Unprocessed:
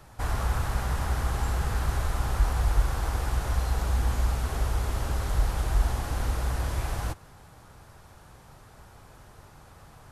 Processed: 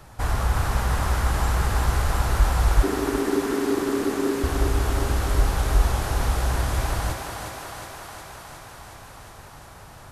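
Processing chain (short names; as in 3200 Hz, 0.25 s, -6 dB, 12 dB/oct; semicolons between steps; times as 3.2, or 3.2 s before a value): 2.83–4.44 ring modulator 340 Hz; thinning echo 0.362 s, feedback 75%, high-pass 220 Hz, level -4 dB; gain +4.5 dB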